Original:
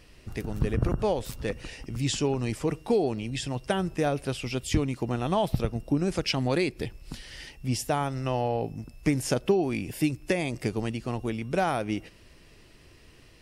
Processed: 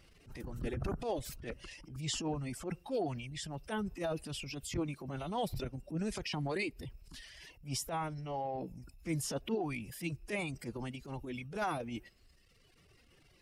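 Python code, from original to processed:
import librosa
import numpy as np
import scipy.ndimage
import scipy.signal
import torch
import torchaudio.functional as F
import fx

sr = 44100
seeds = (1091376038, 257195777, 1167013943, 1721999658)

y = fx.dereverb_blind(x, sr, rt60_s=1.2)
y = fx.pitch_keep_formants(y, sr, semitones=2.0)
y = fx.transient(y, sr, attack_db=-11, sustain_db=5)
y = F.gain(torch.from_numpy(y), -7.0).numpy()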